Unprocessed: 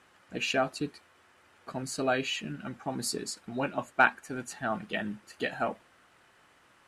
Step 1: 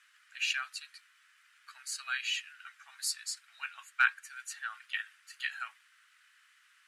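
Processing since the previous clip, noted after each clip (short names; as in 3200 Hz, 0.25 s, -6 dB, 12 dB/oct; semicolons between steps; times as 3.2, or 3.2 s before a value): steep high-pass 1400 Hz 36 dB/oct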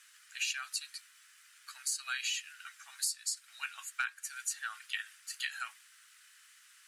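tone controls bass +10 dB, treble +13 dB; compressor 6:1, threshold -32 dBFS, peak gain reduction 13.5 dB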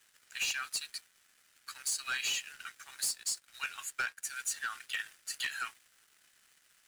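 sample leveller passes 3; gain -7.5 dB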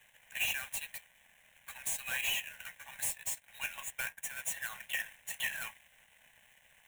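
half-waves squared off; fixed phaser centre 1300 Hz, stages 6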